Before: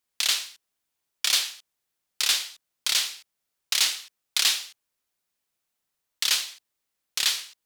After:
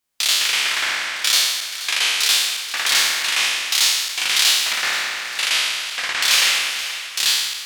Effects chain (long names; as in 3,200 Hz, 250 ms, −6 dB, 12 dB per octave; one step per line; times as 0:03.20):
peak hold with a decay on every bin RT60 1.26 s
delay with pitch and tempo change per echo 125 ms, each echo −6 semitones, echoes 2
feedback echo with a high-pass in the loop 480 ms, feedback 59%, level −14 dB
level +2 dB